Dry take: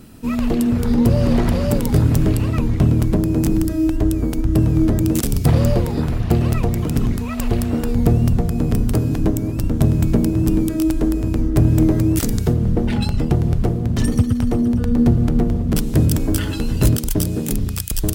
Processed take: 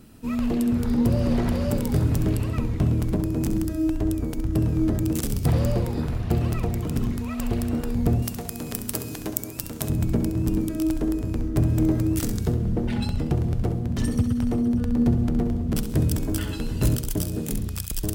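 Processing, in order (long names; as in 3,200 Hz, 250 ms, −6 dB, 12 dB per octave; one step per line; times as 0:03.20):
0:08.22–0:09.90: spectral tilt +3.5 dB per octave
on a send: flutter between parallel walls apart 11.4 metres, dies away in 0.4 s
on the sum: level −7 dB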